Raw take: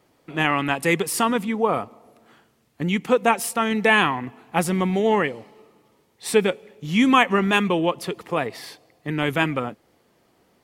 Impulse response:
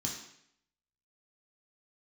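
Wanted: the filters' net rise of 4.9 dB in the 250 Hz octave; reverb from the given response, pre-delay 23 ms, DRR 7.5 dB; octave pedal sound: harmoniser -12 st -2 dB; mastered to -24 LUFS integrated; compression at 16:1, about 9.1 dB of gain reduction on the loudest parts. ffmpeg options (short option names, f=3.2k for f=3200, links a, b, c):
-filter_complex "[0:a]equalizer=f=250:t=o:g=6,acompressor=threshold=-18dB:ratio=16,asplit=2[a][b];[1:a]atrim=start_sample=2205,adelay=23[c];[b][c]afir=irnorm=-1:irlink=0,volume=-8.5dB[d];[a][d]amix=inputs=2:normalize=0,asplit=2[e][f];[f]asetrate=22050,aresample=44100,atempo=2,volume=-2dB[g];[e][g]amix=inputs=2:normalize=0,volume=-3.5dB"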